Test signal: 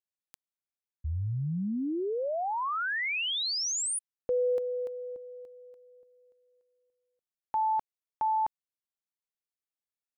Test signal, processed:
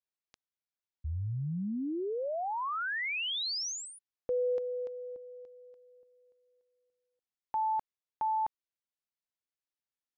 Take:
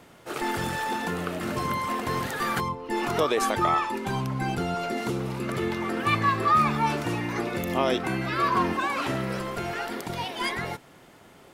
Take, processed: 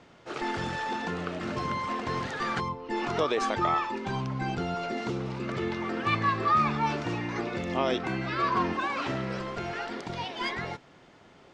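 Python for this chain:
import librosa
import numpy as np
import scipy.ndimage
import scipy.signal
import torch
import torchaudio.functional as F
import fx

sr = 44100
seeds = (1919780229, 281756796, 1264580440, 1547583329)

y = scipy.signal.sosfilt(scipy.signal.butter(4, 6300.0, 'lowpass', fs=sr, output='sos'), x)
y = y * 10.0 ** (-3.0 / 20.0)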